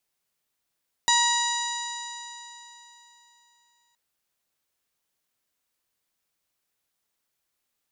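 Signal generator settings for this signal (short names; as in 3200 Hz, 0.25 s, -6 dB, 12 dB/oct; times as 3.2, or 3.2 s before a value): stretched partials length 2.87 s, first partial 947 Hz, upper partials -3.5/-11.5/-1/-8.5/-10/-1.5/-13.5 dB, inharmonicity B 0.0023, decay 3.37 s, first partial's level -21.5 dB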